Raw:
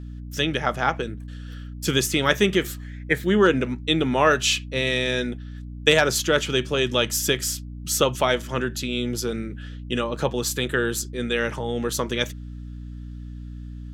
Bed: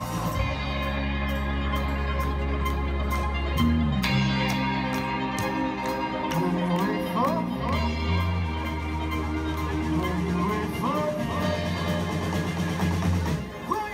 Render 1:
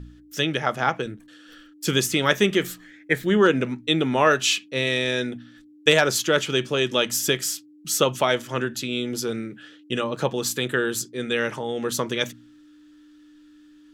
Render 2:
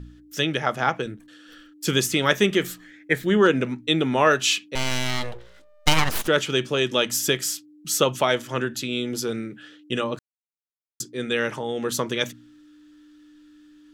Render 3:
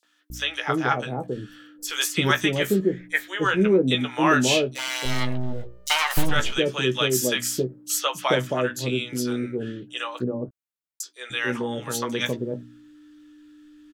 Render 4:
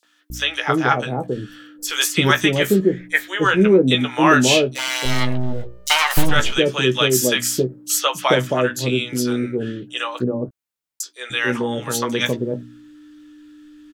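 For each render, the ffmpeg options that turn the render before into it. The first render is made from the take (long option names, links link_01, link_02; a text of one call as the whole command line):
ffmpeg -i in.wav -af "bandreject=frequency=60:width_type=h:width=4,bandreject=frequency=120:width_type=h:width=4,bandreject=frequency=180:width_type=h:width=4,bandreject=frequency=240:width_type=h:width=4" out.wav
ffmpeg -i in.wav -filter_complex "[0:a]asettb=1/sr,asplit=3[link_01][link_02][link_03];[link_01]atrim=end=4.754[link_04];[link_02]atrim=start=4.75:end=6.28,asetpts=PTS-STARTPTS,afade=type=in:duration=0.004:curve=qsin,afade=type=out:start_time=1.526:duration=0.004:curve=qsin,aeval=exprs='abs(val(0))':channel_layout=same[link_05];[link_03]atrim=start=6.276[link_06];[link_04][link_05]acrossfade=duration=0.004:curve1=hsin:curve2=qsin[link_07];[link_07][link_06]acrossfade=duration=0.004:curve1=qsin:curve2=hsin,asplit=3[link_08][link_09][link_10];[link_08]atrim=end=10.19,asetpts=PTS-STARTPTS,afade=type=out:start_time=10.186:duration=0.004:curve=hsin[link_11];[link_09]atrim=start=10.19:end=11,asetpts=PTS-STARTPTS,volume=0[link_12];[link_10]atrim=start=11,asetpts=PTS-STARTPTS,afade=type=in:duration=0.004:curve=hsin[link_13];[link_11][link_12][link_13]concat=n=3:v=0:a=1" out.wav
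ffmpeg -i in.wav -filter_complex "[0:a]asplit=2[link_01][link_02];[link_02]adelay=16,volume=-8dB[link_03];[link_01][link_03]amix=inputs=2:normalize=0,acrossover=split=660|4900[link_04][link_05][link_06];[link_05]adelay=30[link_07];[link_04]adelay=300[link_08];[link_08][link_07][link_06]amix=inputs=3:normalize=0" out.wav
ffmpeg -i in.wav -af "volume=5.5dB,alimiter=limit=-1dB:level=0:latency=1" out.wav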